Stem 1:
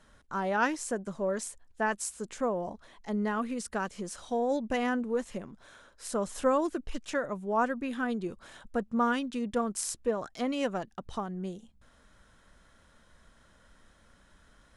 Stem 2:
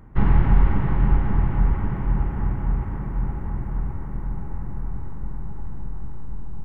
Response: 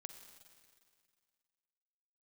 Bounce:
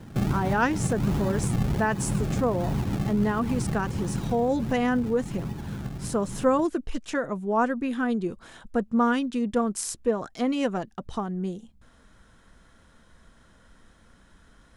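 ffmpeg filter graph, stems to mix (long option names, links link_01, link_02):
-filter_complex "[0:a]lowshelf=frequency=160:gain=-6.5,bandreject=frequency=580:width=12,volume=2.5dB,asplit=2[link_01][link_02];[1:a]highpass=150,acompressor=threshold=-30dB:ratio=6,acrusher=samples=31:mix=1:aa=0.000001:lfo=1:lforange=31:lforate=1.4,volume=2dB[link_03];[link_02]apad=whole_len=293062[link_04];[link_03][link_04]sidechaincompress=threshold=-30dB:ratio=8:attack=8:release=220[link_05];[link_01][link_05]amix=inputs=2:normalize=0,lowshelf=frequency=360:gain=9"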